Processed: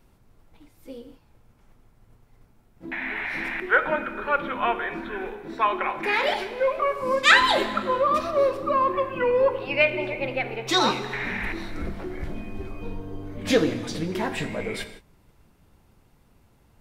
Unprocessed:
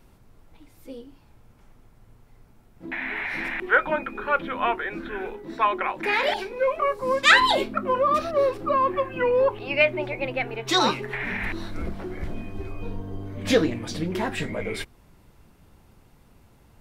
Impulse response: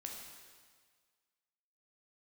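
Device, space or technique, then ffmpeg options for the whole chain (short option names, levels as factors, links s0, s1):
keyed gated reverb: -filter_complex "[0:a]asplit=3[s0][s1][s2];[1:a]atrim=start_sample=2205[s3];[s1][s3]afir=irnorm=-1:irlink=0[s4];[s2]apad=whole_len=740955[s5];[s4][s5]sidechaingate=range=0.0224:threshold=0.00398:ratio=16:detection=peak,volume=0.944[s6];[s0][s6]amix=inputs=2:normalize=0,volume=0.631"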